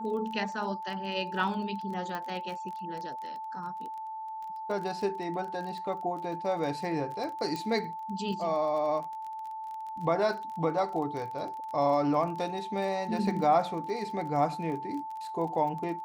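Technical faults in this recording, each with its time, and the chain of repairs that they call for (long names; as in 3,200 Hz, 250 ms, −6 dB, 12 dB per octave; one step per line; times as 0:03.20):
surface crackle 23 per second −37 dBFS
whistle 880 Hz −36 dBFS
0:02.15: click −22 dBFS
0:07.56: click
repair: click removal
notch filter 880 Hz, Q 30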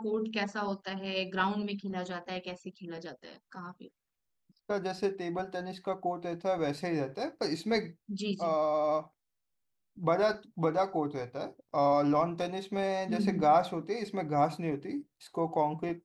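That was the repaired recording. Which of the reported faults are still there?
none of them is left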